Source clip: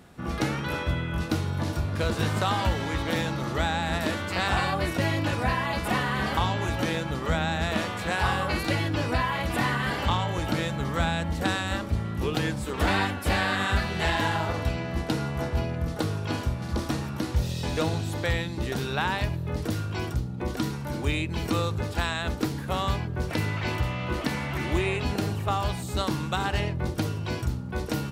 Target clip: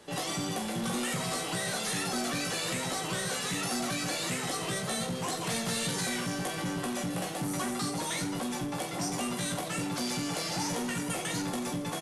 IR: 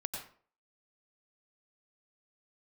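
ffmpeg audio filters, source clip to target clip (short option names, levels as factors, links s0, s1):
-filter_complex "[0:a]acrossover=split=490|3000[s0][s1][s2];[s1]acompressor=threshold=0.0316:ratio=6[s3];[s0][s3][s2]amix=inputs=3:normalize=0,asplit=2[s4][s5];[s5]aeval=exprs='(mod(17.8*val(0)+1,2)-1)/17.8':c=same,volume=0.316[s6];[s4][s6]amix=inputs=2:normalize=0,aecho=1:1:40|104|206.4|370.2|632.4:0.631|0.398|0.251|0.158|0.1,aresample=11025,asoftclip=type=tanh:threshold=0.0944,aresample=44100,highshelf=f=2800:g=9,asetrate=103194,aresample=44100,volume=0.473"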